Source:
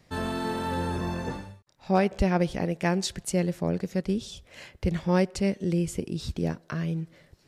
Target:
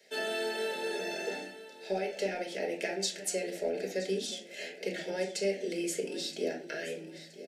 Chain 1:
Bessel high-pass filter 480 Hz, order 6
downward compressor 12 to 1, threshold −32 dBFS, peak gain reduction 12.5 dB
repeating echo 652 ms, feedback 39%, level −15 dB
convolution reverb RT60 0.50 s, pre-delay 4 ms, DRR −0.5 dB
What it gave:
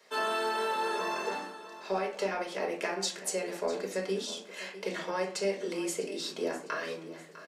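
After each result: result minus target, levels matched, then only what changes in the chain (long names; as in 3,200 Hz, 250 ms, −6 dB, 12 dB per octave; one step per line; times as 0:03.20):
1,000 Hz band +8.0 dB; echo 320 ms early
add after downward compressor: Butterworth band-reject 1,100 Hz, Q 1.2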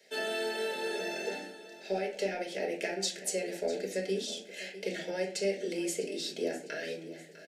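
echo 320 ms early
change: repeating echo 972 ms, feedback 39%, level −15 dB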